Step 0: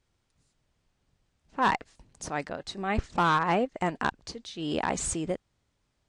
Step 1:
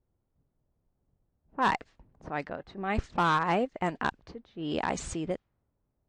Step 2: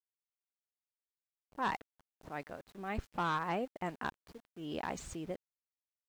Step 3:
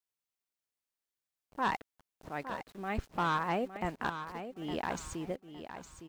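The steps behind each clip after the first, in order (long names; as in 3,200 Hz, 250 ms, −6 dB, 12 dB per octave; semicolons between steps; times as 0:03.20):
low-pass that shuts in the quiet parts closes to 710 Hz, open at −23 dBFS; level −1.5 dB
upward compression, threshold −45 dBFS; centre clipping without the shift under −46.5 dBFS; level −8.5 dB
repeating echo 861 ms, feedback 26%, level −10 dB; level +3 dB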